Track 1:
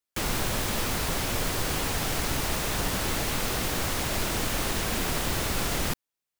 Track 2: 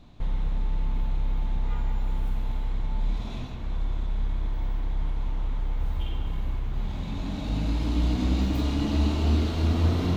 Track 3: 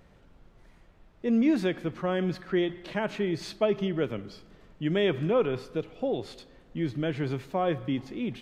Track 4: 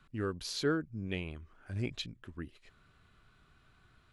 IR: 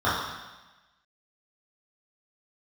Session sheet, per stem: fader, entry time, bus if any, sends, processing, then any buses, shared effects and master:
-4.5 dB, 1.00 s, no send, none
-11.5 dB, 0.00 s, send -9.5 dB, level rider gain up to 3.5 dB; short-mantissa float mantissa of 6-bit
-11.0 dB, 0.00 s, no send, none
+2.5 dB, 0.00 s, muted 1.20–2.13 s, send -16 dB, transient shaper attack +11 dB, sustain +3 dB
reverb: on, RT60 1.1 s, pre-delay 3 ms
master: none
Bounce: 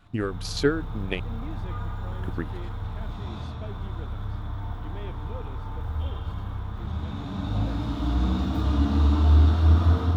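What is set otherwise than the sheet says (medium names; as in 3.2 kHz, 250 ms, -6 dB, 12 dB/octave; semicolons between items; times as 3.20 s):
stem 1: muted; stem 3 -11.0 dB -> -18.0 dB; stem 4: send off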